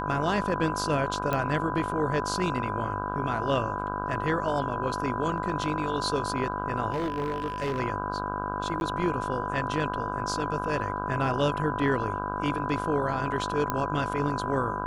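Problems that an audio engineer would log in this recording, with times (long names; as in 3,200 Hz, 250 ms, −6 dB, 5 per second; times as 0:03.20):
mains buzz 50 Hz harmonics 32 −34 dBFS
whistle 1,000 Hz −33 dBFS
0:01.33: click −14 dBFS
0:06.92–0:07.80: clipping −25 dBFS
0:08.80–0:08.81: drop-out 11 ms
0:13.70: click −12 dBFS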